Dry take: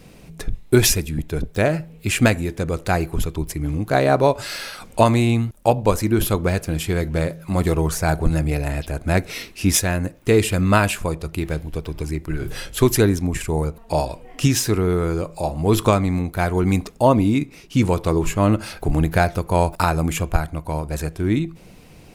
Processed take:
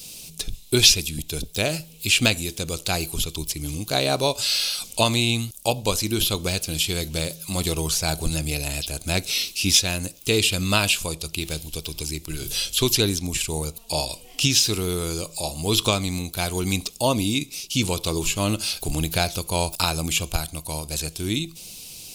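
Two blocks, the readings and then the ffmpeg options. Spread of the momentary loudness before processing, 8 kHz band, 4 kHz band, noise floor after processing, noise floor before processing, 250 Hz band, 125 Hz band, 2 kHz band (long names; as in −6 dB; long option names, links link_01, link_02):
10 LU, +4.0 dB, +9.0 dB, −46 dBFS, −45 dBFS, −7.0 dB, −7.0 dB, −1.0 dB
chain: -filter_complex "[0:a]acrossover=split=3900[link_01][link_02];[link_02]acompressor=threshold=-46dB:ratio=4:attack=1:release=60[link_03];[link_01][link_03]amix=inputs=2:normalize=0,aexciter=amount=15.8:drive=3.6:freq=2800,volume=-7dB"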